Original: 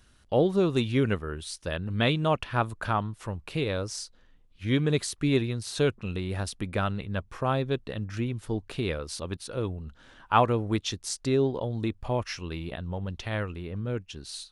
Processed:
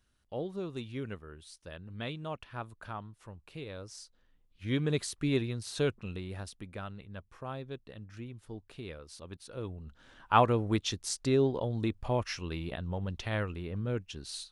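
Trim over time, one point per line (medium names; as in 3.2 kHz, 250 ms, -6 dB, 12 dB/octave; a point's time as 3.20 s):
3.68 s -14 dB
4.85 s -5 dB
5.91 s -5 dB
6.78 s -13.5 dB
9.09 s -13.5 dB
10.34 s -2 dB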